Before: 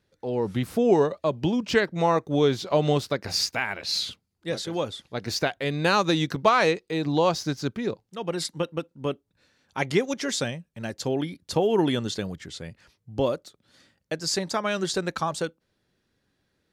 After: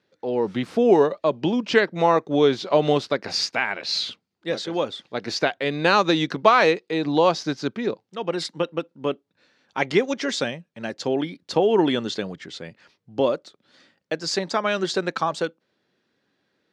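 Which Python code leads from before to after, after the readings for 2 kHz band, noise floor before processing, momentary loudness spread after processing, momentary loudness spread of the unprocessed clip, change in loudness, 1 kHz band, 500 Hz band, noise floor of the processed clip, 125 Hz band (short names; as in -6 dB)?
+4.0 dB, -75 dBFS, 13 LU, 12 LU, +3.0 dB, +4.0 dB, +4.0 dB, -75 dBFS, -3.0 dB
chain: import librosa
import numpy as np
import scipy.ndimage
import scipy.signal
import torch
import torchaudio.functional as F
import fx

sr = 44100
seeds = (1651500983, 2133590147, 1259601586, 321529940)

y = fx.bandpass_edges(x, sr, low_hz=210.0, high_hz=4900.0)
y = F.gain(torch.from_numpy(y), 4.0).numpy()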